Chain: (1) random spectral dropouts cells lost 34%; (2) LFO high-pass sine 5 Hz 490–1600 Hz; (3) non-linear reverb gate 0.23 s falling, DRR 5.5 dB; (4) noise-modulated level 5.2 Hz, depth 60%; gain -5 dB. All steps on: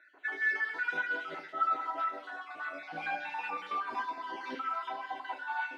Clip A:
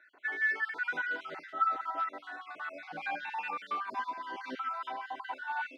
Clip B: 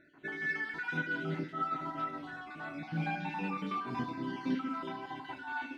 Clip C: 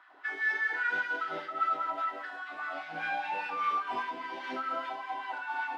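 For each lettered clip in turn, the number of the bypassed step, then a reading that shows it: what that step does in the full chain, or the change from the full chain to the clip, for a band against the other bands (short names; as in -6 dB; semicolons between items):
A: 3, momentary loudness spread change +1 LU; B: 2, 125 Hz band +24.5 dB; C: 1, crest factor change -1.5 dB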